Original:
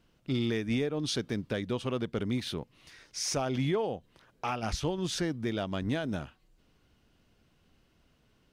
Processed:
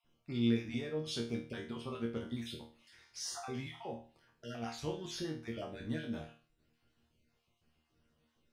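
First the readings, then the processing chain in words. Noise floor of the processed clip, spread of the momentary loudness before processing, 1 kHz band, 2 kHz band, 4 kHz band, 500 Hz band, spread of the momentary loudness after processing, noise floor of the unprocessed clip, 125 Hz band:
-79 dBFS, 8 LU, -10.5 dB, -8.5 dB, -7.5 dB, -8.5 dB, 13 LU, -68 dBFS, -8.0 dB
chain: random holes in the spectrogram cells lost 31%; chord resonator D#2 fifth, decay 0.39 s; trim +5 dB

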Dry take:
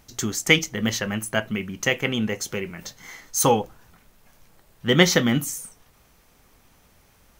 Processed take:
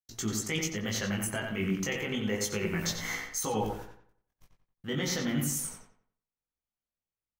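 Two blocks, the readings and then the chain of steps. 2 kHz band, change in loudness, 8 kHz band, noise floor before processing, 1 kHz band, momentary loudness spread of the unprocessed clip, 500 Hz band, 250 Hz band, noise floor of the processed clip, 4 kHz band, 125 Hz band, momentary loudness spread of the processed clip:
-11.0 dB, -9.5 dB, -6.0 dB, -58 dBFS, -11.0 dB, 18 LU, -10.0 dB, -7.5 dB, under -85 dBFS, -11.0 dB, -7.0 dB, 6 LU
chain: gate -47 dBFS, range -57 dB; level rider gain up to 15 dB; peak limiter -11.5 dBFS, peak gain reduction 11 dB; reverse; compression, threshold -29 dBFS, peak gain reduction 12.5 dB; reverse; chorus 0.31 Hz, delay 18 ms, depth 3 ms; on a send: filtered feedback delay 90 ms, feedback 35%, low-pass 3.3 kHz, level -4 dB; on the sum: trim +2 dB

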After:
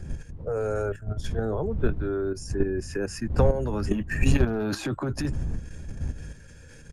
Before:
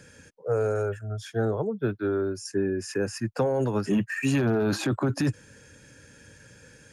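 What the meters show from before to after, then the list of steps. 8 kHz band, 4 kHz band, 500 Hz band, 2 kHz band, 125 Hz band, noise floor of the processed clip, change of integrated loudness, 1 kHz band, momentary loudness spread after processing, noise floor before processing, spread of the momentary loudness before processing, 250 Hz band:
-1.5 dB, -1.5 dB, -1.0 dB, -1.5 dB, +2.0 dB, -47 dBFS, -1.0 dB, -1.0 dB, 13 LU, -54 dBFS, 6 LU, -2.0 dB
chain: wind noise 84 Hz -28 dBFS; doubling 13 ms -13 dB; level held to a coarse grid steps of 10 dB; trim +3 dB

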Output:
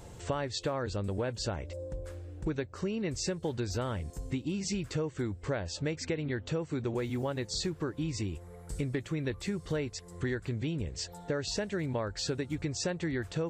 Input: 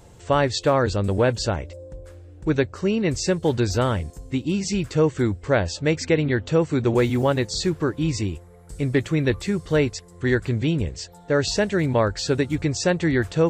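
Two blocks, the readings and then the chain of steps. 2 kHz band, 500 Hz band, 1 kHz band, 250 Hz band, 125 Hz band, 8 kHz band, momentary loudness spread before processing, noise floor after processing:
-13.0 dB, -13.0 dB, -14.0 dB, -12.0 dB, -11.5 dB, -8.0 dB, 8 LU, -50 dBFS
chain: compression 6:1, threshold -31 dBFS, peak gain reduction 16 dB

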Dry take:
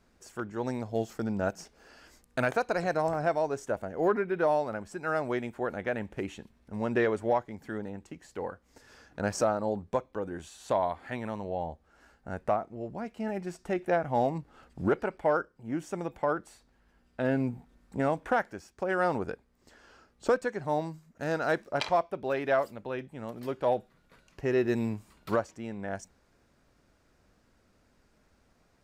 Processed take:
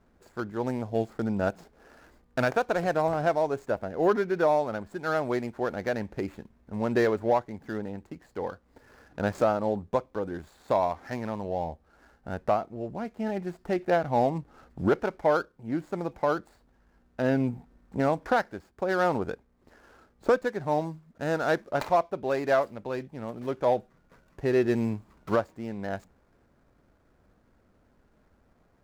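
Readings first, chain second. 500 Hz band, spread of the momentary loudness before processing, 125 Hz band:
+3.0 dB, 12 LU, +3.0 dB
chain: median filter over 15 samples; trim +3 dB

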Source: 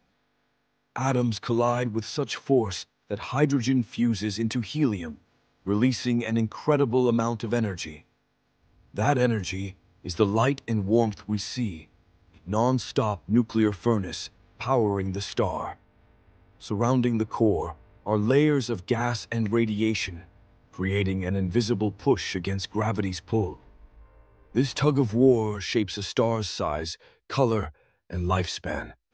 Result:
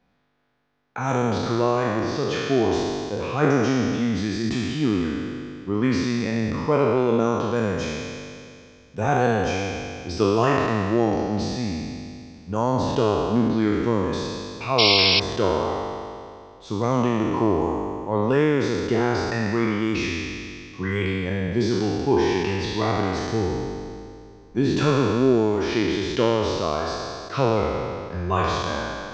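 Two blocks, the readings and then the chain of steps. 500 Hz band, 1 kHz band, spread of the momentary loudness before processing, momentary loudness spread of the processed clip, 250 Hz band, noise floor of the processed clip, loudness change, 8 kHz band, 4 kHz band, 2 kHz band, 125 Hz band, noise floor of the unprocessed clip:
+4.0 dB, +5.0 dB, 12 LU, 12 LU, +2.5 dB, -47 dBFS, +3.5 dB, +0.5 dB, +8.5 dB, +6.0 dB, +1.0 dB, -71 dBFS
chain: spectral sustain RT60 2.36 s; treble shelf 4.3 kHz -9 dB; painted sound noise, 14.78–15.20 s, 2.1–5.6 kHz -17 dBFS; trim -1 dB

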